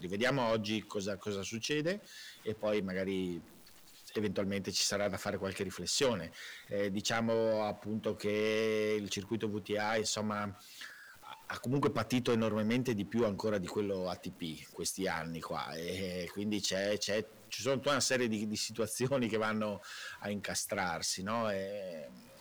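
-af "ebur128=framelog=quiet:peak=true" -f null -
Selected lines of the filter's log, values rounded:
Integrated loudness:
  I:         -34.9 LUFS
  Threshold: -45.2 LUFS
Loudness range:
  LRA:         3.4 LU
  Threshold: -55.2 LUFS
  LRA low:   -37.2 LUFS
  LRA high:  -33.8 LUFS
True peak:
  Peak:      -23.9 dBFS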